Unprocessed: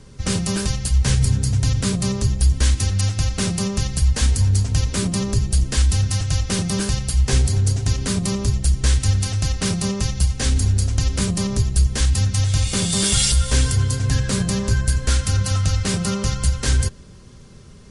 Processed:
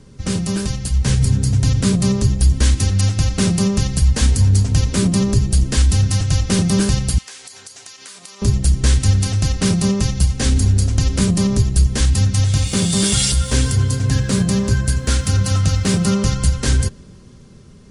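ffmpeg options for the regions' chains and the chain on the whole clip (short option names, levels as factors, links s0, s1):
-filter_complex "[0:a]asettb=1/sr,asplit=3[s0][s1][s2];[s0]atrim=end=7.184[s3];[s1]atrim=start=7.18:end=8.42,asetpts=PTS-STARTPTS,afade=t=in:d=0.004:c=qsin,afade=t=out:st=1.236:d=0.004:c=qsin,highpass=1100,acompressor=threshold=0.0158:ratio=8:attack=3.2:release=140:knee=1:detection=peak[s4];[s2]atrim=start=8.416[s5];[s3][s4]acrossfade=d=0.004:c1=hsin:c2=qsin[s6];[s6][s5]acrossfade=d=0.004:c1=qsin:c2=hsin,asettb=1/sr,asplit=3[s7][s8][s9];[s7]atrim=end=12.544[s10];[s8]atrim=start=12.54:end=16.06,asetpts=PTS-STARTPTS,afade=t=in:d=0.004:c=qsin,afade=t=out:st=3.516:d=0.004:c=qsin,highpass=53,aeval=exprs='sgn(val(0))*max(abs(val(0))-0.00355,0)':c=same[s11];[s9]atrim=start=16.056[s12];[s10][s11]acrossfade=d=0.004:c1=hsin:c2=qsin[s13];[s13][s12]acrossfade=d=0.004:c1=qsin:c2=hsin,equalizer=f=230:w=0.68:g=5.5,dynaudnorm=f=140:g=17:m=3.76,volume=0.75"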